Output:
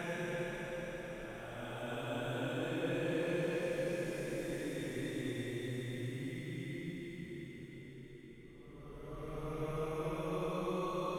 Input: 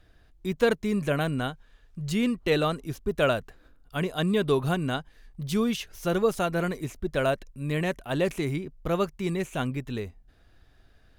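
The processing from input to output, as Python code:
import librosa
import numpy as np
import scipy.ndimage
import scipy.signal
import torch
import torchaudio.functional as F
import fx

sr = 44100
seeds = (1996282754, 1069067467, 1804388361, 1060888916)

y = fx.spec_trails(x, sr, decay_s=0.76)
y = fx.doppler_pass(y, sr, speed_mps=32, closest_m=6.2, pass_at_s=2.73)
y = fx.paulstretch(y, sr, seeds[0], factor=8.9, window_s=0.25, from_s=8.08)
y = F.gain(torch.from_numpy(y), 15.5).numpy()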